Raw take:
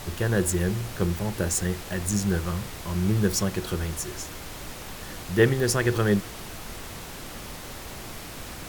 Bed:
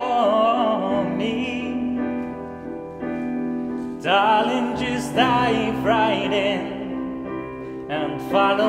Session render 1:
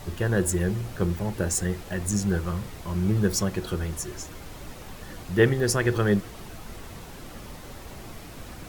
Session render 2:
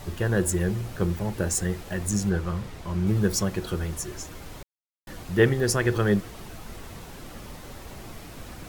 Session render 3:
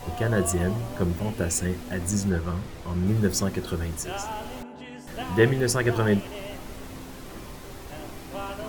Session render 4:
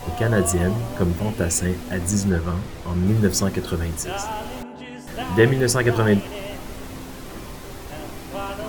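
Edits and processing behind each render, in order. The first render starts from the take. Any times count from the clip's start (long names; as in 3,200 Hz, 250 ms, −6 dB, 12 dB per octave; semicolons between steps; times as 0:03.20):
broadband denoise 7 dB, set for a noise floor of −39 dBFS
0:02.29–0:03.07: high-shelf EQ 8,200 Hz −9 dB; 0:04.63–0:05.07: silence
mix in bed −17.5 dB
level +4.5 dB; brickwall limiter −3 dBFS, peak gain reduction 1.5 dB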